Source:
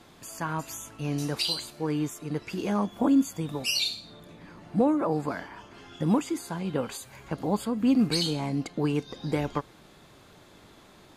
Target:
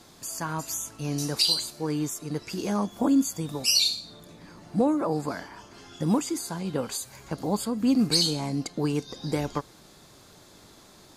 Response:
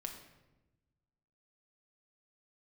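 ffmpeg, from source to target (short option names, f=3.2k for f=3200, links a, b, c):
-af "highshelf=f=3.8k:t=q:w=1.5:g=6.5"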